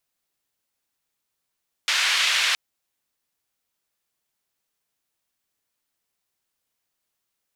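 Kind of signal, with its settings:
band-limited noise 2,000–3,000 Hz, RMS −21.5 dBFS 0.67 s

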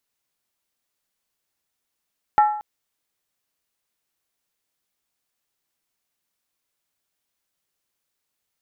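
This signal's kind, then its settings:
struck skin length 0.23 s, lowest mode 843 Hz, decay 0.62 s, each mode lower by 10 dB, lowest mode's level −9.5 dB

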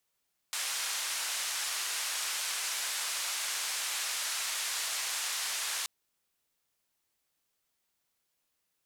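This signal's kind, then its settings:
band-limited noise 1,000–9,200 Hz, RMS −34.5 dBFS 5.33 s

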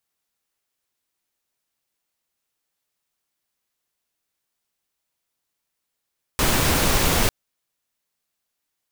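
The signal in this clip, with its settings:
noise pink, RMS −19 dBFS 0.90 s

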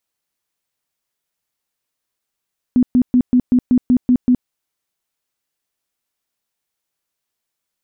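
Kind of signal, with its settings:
tone bursts 249 Hz, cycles 17, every 0.19 s, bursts 9, −8.5 dBFS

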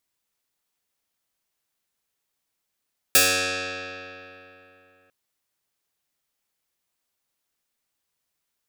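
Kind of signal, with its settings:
Karplus-Strong string F#2, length 1.95 s, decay 3.15 s, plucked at 0.09, medium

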